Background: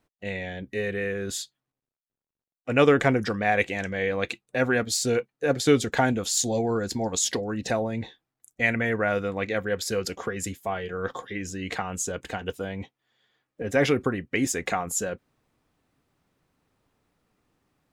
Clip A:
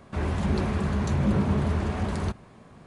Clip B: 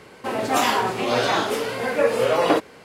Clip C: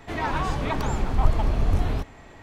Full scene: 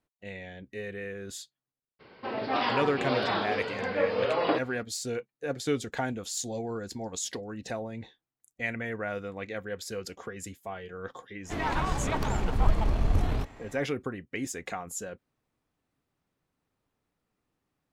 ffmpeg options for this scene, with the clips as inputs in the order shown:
-filter_complex "[0:a]volume=-9dB[a];[2:a]aresample=11025,aresample=44100[b];[3:a]aeval=exprs='if(lt(val(0),0),0.708*val(0),val(0))':c=same[c];[b]atrim=end=2.84,asetpts=PTS-STARTPTS,volume=-8dB,afade=t=in:d=0.02,afade=t=out:st=2.82:d=0.02,adelay=1990[d];[c]atrim=end=2.42,asetpts=PTS-STARTPTS,volume=-2dB,afade=t=in:d=0.1,afade=t=out:st=2.32:d=0.1,adelay=11420[e];[a][d][e]amix=inputs=3:normalize=0"

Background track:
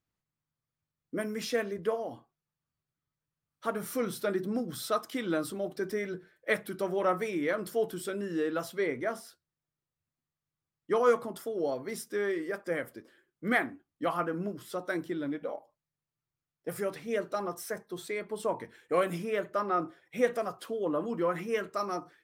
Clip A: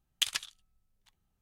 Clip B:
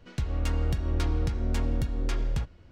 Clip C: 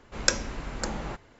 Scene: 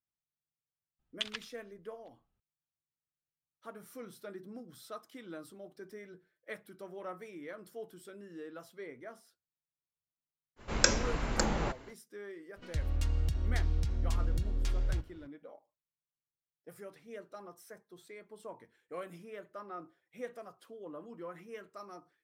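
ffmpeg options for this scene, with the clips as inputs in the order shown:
-filter_complex "[0:a]volume=-15dB[a];[1:a]lowpass=3.4k[b];[3:a]alimiter=level_in=5dB:limit=-1dB:release=50:level=0:latency=1[c];[2:a]acrossover=split=120|3000[d][e][f];[e]acompressor=threshold=-42dB:ratio=6:attack=3.2:release=140:knee=2.83:detection=peak[g];[d][g][f]amix=inputs=3:normalize=0[h];[b]atrim=end=1.41,asetpts=PTS-STARTPTS,volume=-4dB,afade=t=in:d=0.004:c=hsin,afade=t=out:st=1.406:d=0.004:c=hsin,adelay=990[i];[c]atrim=end=1.39,asetpts=PTS-STARTPTS,volume=-3dB,afade=t=in:d=0.05,afade=t=out:st=1.34:d=0.05,adelay=10560[j];[h]atrim=end=2.71,asetpts=PTS-STARTPTS,volume=-3dB,afade=t=in:d=0.004:c=hsin,afade=t=out:st=2.706:d=0.004:c=hsin,adelay=12560[k];[a][i][j][k]amix=inputs=4:normalize=0"

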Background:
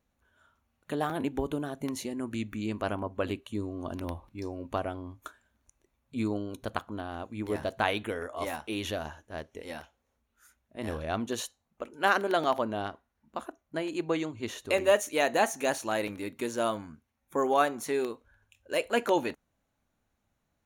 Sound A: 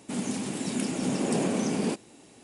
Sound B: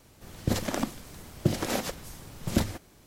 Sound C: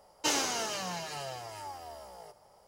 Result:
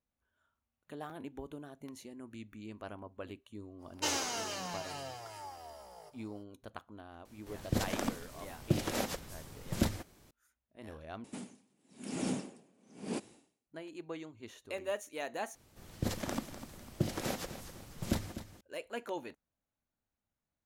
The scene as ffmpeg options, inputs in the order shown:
-filter_complex "[2:a]asplit=2[a][b];[0:a]volume=-13.5dB[c];[1:a]aeval=exprs='val(0)*pow(10,-38*(0.5-0.5*cos(2*PI*1*n/s))/20)':c=same[d];[b]aecho=1:1:250|500|750|1000:0.251|0.098|0.0382|0.0149[e];[c]asplit=3[f][g][h];[f]atrim=end=11.244[i];[d]atrim=end=2.43,asetpts=PTS-STARTPTS,volume=-4dB[j];[g]atrim=start=13.666:end=15.554[k];[e]atrim=end=3.06,asetpts=PTS-STARTPTS,volume=-7.5dB[l];[h]atrim=start=18.606[m];[3:a]atrim=end=2.67,asetpts=PTS-STARTPTS,volume=-4dB,afade=t=in:d=0.05,afade=t=out:st=2.62:d=0.05,adelay=3780[n];[a]atrim=end=3.06,asetpts=PTS-STARTPTS,volume=-5dB,afade=t=in:d=0.004:c=hsin,afade=t=out:st=3.056:d=0.004:c=hsin,adelay=7250[o];[i][j]acrossfade=d=0.004:c1=hsin:c2=hsin[p];[p][k]acrossfade=d=0.004:c1=hsin:c2=hsin[q];[q][l]acrossfade=d=0.004:c1=hsin:c2=hsin[r];[r][m]acrossfade=d=0.004:c1=hsin:c2=hsin[s];[s][n][o]amix=inputs=3:normalize=0"

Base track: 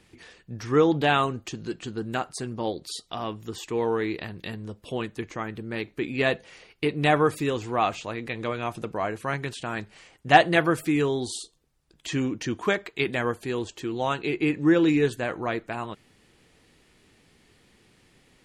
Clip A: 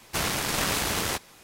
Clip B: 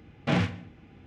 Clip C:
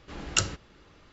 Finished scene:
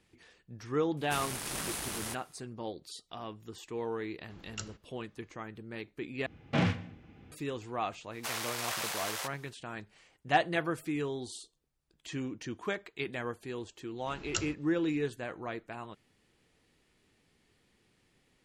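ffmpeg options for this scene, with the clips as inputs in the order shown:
-filter_complex "[1:a]asplit=2[a][b];[3:a]asplit=2[c][d];[0:a]volume=-10.5dB[e];[a]equalizer=f=9.7k:t=o:w=0.51:g=9[f];[b]highpass=f=550:w=0.5412,highpass=f=550:w=1.3066[g];[e]asplit=2[h][i];[h]atrim=end=6.264[j];[2:a]atrim=end=1.06,asetpts=PTS-STARTPTS,volume=-3dB[k];[i]atrim=start=7.316[l];[f]atrim=end=1.43,asetpts=PTS-STARTPTS,volume=-12.5dB,afade=t=in:d=0.004:c=hsin,afade=t=out:st=1.426:d=0.004:c=hsin,adelay=970[m];[c]atrim=end=1.12,asetpts=PTS-STARTPTS,volume=-16.5dB,afade=t=in:d=0.004:c=hsin,afade=t=out:st=1.116:d=0.004:c=hsin,adelay=185661S[n];[g]atrim=end=1.43,asetpts=PTS-STARTPTS,volume=-8.5dB,afade=t=in:d=0.05,afade=t=out:st=1.38:d=0.05,adelay=357210S[o];[d]atrim=end=1.12,asetpts=PTS-STARTPTS,volume=-9.5dB,afade=t=in:d=0.004:c=hsin,afade=t=out:st=1.116:d=0.004:c=hsin,adelay=13980[p];[j][k]acrossfade=d=0.004:c1=hsin:c2=hsin[q];[q][l]acrossfade=d=0.004:c1=hsin:c2=hsin[r];[r][m][n][o][p]amix=inputs=5:normalize=0"

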